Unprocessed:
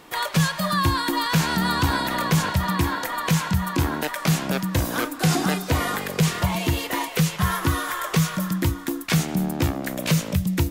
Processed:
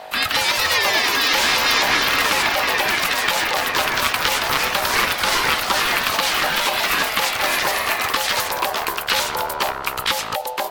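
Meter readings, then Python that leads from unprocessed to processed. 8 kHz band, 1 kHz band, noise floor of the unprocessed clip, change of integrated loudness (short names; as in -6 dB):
+5.5 dB, +6.0 dB, -35 dBFS, +5.0 dB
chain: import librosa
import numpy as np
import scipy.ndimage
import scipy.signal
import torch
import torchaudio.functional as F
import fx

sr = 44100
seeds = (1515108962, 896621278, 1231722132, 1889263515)

p1 = fx.hpss(x, sr, part='harmonic', gain_db=-9)
p2 = fx.add_hum(p1, sr, base_hz=50, snr_db=12)
p3 = fx.high_shelf(p2, sr, hz=5300.0, db=6.5)
p4 = p3 * np.sin(2.0 * np.pi * 690.0 * np.arange(len(p3)) / sr)
p5 = fx.over_compress(p4, sr, threshold_db=-30.0, ratio=-1.0)
p6 = p4 + (p5 * librosa.db_to_amplitude(0.0))
p7 = fx.band_shelf(p6, sr, hz=2200.0, db=9.5, octaves=2.5)
p8 = fx.echo_pitch(p7, sr, ms=187, semitones=2, count=3, db_per_echo=-3.0)
p9 = fx.attack_slew(p8, sr, db_per_s=350.0)
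y = p9 * librosa.db_to_amplitude(-3.0)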